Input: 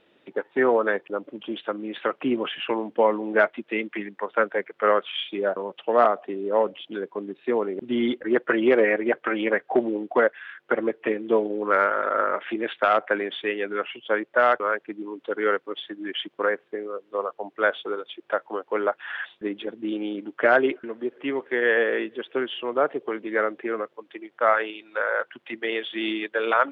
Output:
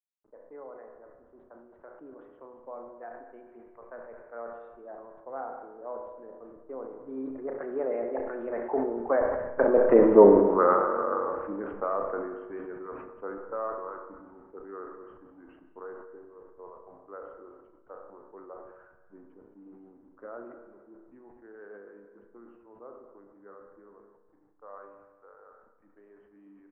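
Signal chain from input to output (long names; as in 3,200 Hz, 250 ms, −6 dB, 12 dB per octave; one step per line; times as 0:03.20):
hold until the input has moved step −35.5 dBFS
source passing by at 0:10.06, 36 m/s, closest 8.8 metres
low-pass filter 1,200 Hz 24 dB per octave
low-shelf EQ 390 Hz −3.5 dB
on a send: single-tap delay 219 ms −16 dB
on the sum: spring reverb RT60 1.5 s, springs 30/34 ms, chirp 75 ms, DRR 5.5 dB
level that may fall only so fast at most 45 dB per second
level +8.5 dB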